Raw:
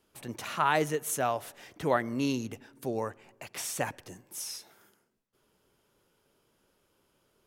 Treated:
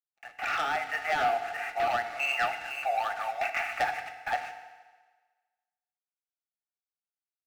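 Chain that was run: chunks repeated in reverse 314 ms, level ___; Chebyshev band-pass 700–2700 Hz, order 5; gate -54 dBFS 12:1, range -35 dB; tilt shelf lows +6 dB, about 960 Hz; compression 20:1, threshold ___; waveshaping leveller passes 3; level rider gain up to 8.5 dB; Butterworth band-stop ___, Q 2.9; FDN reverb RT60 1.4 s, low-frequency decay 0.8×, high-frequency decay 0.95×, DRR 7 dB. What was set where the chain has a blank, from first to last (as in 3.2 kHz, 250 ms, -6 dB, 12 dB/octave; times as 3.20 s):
-9 dB, -39 dBFS, 1 kHz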